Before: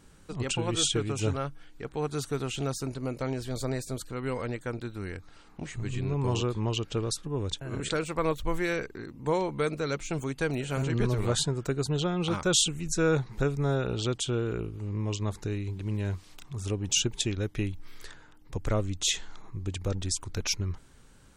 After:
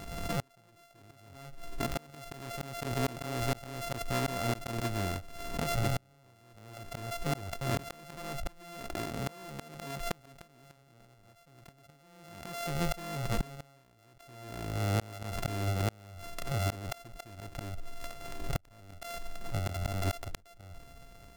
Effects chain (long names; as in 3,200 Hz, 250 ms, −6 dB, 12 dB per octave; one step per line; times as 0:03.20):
samples sorted by size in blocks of 64 samples
gate with flip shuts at −22 dBFS, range −37 dB
background raised ahead of every attack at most 41 dB per second
level +3 dB